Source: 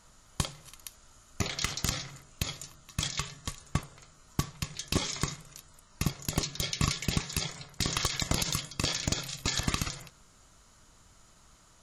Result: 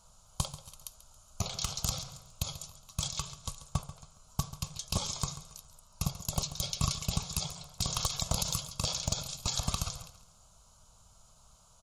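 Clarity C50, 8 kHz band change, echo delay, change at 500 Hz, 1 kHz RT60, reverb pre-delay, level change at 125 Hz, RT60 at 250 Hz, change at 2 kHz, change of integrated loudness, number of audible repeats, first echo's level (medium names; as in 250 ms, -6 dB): no reverb, -0.5 dB, 138 ms, -4.0 dB, no reverb, no reverb, -2.0 dB, no reverb, -11.5 dB, -2.5 dB, 3, -14.5 dB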